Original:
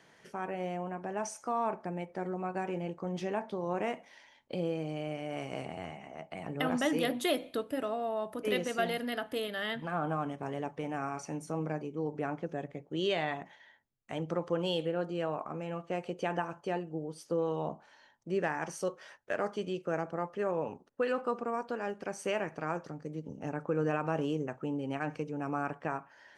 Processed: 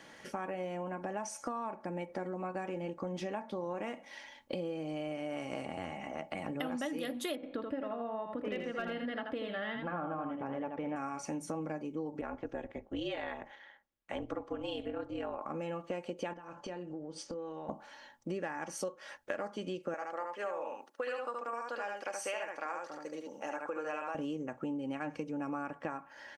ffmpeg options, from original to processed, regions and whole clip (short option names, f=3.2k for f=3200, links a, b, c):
-filter_complex "[0:a]asettb=1/sr,asplit=3[a][b][c];[a]atrim=end=7.354[d];[b]atrim=start=7.35:end=10.96,asetpts=PTS-STARTPTS,afade=t=in:d=0.004:c=qsin,afade=t=out:st=3.606:d=0.004:c=qsin,lowpass=2.3k,volume=22dB,asoftclip=hard,volume=-22dB,aecho=1:1:81:0.501,atrim=end_sample=159201[e];[c]atrim=start=10.956[f];[d][e]acrossfade=d=0.004:c1=hsin:c2=qsin[g];[g][f]acrossfade=d=0.004:c1=qsin:c2=hsin,asettb=1/sr,asplit=3[h][i][j];[h]atrim=end=12.214[k];[i]atrim=start=12.21:end=15.42,asetpts=PTS-STARTPTS,afade=t=in:d=0.004:c=qsin,afade=t=out:st=3.206:d=0.004:c=qsin,bass=f=250:g=-10,treble=f=4k:g=-8,tremolo=f=210:d=0.75,afreqshift=-36[l];[j]atrim=start=15.416[m];[k][l]acrossfade=d=0.004:c1=hsin:c2=qsin[n];[n][m]acrossfade=d=0.004:c1=qsin:c2=hsin,asettb=1/sr,asplit=3[o][p][q];[o]atrim=end=16.334[r];[p]atrim=start=16.33:end=17.69,asetpts=PTS-STARTPTS,afade=t=in:d=0.004:c=qsin,afade=t=out:st=1.356:d=0.004:c=qsin,lowpass=f=7.5k:w=0.5412,lowpass=f=7.5k:w=1.3066,acompressor=threshold=-46dB:ratio=6:attack=3.2:release=140:knee=1:detection=peak,asplit=2[s][t];[t]adelay=28,volume=-13dB[u];[s][u]amix=inputs=2:normalize=0,atrim=end_sample=59976[v];[q]atrim=start=17.686[w];[r][v]acrossfade=d=0.004:c1=hsin:c2=qsin[x];[x][w]acrossfade=d=0.004:c1=qsin:c2=hsin,asettb=1/sr,asplit=3[y][z][aa];[y]atrim=end=19.944[ab];[z]atrim=start=19.94:end=24.15,asetpts=PTS-STARTPTS,afade=t=in:d=0.004:c=qsin,afade=t=out:st=4.206:d=0.004:c=qsin,highpass=650,aecho=1:1:73:0.668,atrim=end_sample=185661[ac];[aa]atrim=start=24.146[ad];[ab][ac]acrossfade=d=0.004:c1=hsin:c2=qsin[ae];[ae][ad]acrossfade=d=0.004:c1=qsin:c2=hsin,aecho=1:1:3.6:0.44,acompressor=threshold=-42dB:ratio=6,volume=6.5dB"